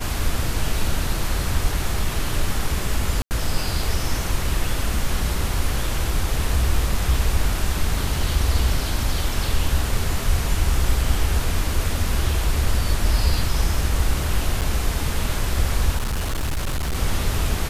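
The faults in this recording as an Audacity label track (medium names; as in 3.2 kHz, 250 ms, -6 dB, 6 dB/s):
3.220000	3.310000	dropout 89 ms
14.610000	14.620000	dropout 8 ms
15.970000	16.960000	clipped -20 dBFS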